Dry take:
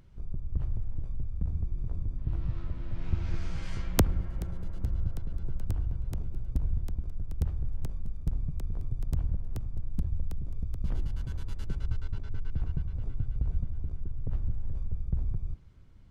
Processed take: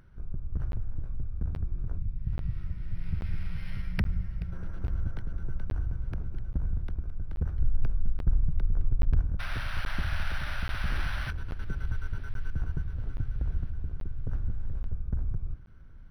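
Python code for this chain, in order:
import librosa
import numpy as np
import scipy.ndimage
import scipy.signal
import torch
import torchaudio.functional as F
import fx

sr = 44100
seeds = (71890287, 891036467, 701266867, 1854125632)

y = np.clip(10.0 ** (21.0 / 20.0) * x, -1.0, 1.0) / 10.0 ** (21.0 / 20.0)
y = fx.spec_box(y, sr, start_s=1.98, length_s=2.54, low_hz=230.0, high_hz=1800.0, gain_db=-12)
y = fx.low_shelf(y, sr, hz=65.0, db=9.0, at=(7.58, 9.21))
y = fx.spec_paint(y, sr, seeds[0], shape='noise', start_s=9.39, length_s=1.92, low_hz=530.0, high_hz=5700.0, level_db=-41.0)
y = fx.peak_eq(y, sr, hz=1500.0, db=12.5, octaves=0.45)
y = fx.echo_feedback(y, sr, ms=1197, feedback_pct=47, wet_db=-21.5)
y = fx.buffer_crackle(y, sr, first_s=0.72, period_s=0.83, block=512, kind='zero')
y = np.interp(np.arange(len(y)), np.arange(len(y))[::6], y[::6])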